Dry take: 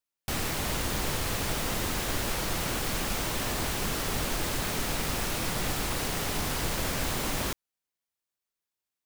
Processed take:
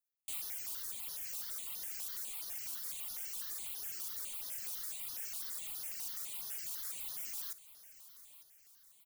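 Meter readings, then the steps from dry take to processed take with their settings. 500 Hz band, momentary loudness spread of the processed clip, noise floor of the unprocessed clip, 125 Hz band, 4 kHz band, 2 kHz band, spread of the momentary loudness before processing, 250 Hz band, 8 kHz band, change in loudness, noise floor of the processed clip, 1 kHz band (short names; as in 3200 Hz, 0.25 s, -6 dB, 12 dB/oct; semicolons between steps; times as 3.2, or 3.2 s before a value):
-32.0 dB, 13 LU, under -85 dBFS, under -35 dB, -15.5 dB, -21.5 dB, 0 LU, under -35 dB, -9.0 dB, -9.5 dB, -65 dBFS, -26.5 dB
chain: reverb removal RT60 1.7 s; pre-emphasis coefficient 0.97; on a send: feedback echo 0.9 s, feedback 49%, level -15.5 dB; on the sum: step phaser 12 Hz 510–7900 Hz; gain -3.5 dB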